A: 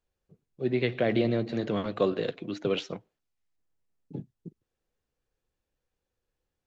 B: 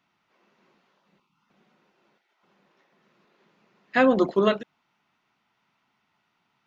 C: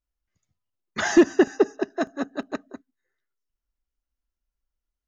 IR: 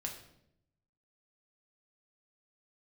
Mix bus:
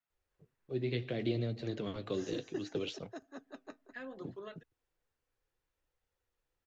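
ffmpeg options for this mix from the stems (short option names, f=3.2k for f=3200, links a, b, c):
-filter_complex "[0:a]adelay=100,volume=1dB[a];[1:a]equalizer=f=1.7k:t=o:w=0.25:g=8.5,volume=-20dB[b];[2:a]adelay=1150,volume=-13dB,afade=t=in:st=2.02:d=0.6:silence=0.354813[c];[a][b][c]amix=inputs=3:normalize=0,equalizer=f=200:w=2.5:g=-8,acrossover=split=350|3000[d][e][f];[e]acompressor=threshold=-42dB:ratio=4[g];[d][g][f]amix=inputs=3:normalize=0,flanger=delay=1.4:depth=8.8:regen=-58:speed=0.66:shape=sinusoidal"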